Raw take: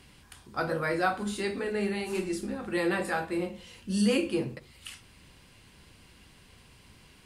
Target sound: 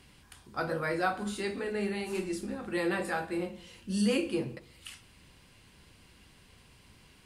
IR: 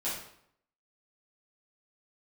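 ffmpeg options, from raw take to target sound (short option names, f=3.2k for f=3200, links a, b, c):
-filter_complex "[0:a]asplit=2[a][b];[1:a]atrim=start_sample=2205,adelay=124[c];[b][c]afir=irnorm=-1:irlink=0,volume=-27dB[d];[a][d]amix=inputs=2:normalize=0,volume=-2.5dB"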